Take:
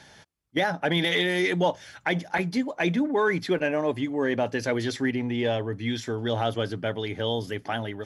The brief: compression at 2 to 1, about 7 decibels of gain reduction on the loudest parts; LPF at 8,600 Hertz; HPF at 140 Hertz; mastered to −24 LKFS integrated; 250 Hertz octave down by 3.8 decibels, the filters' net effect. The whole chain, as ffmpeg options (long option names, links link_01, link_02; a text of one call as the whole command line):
ffmpeg -i in.wav -af "highpass=140,lowpass=8600,equalizer=frequency=250:width_type=o:gain=-4.5,acompressor=threshold=-33dB:ratio=2,volume=9.5dB" out.wav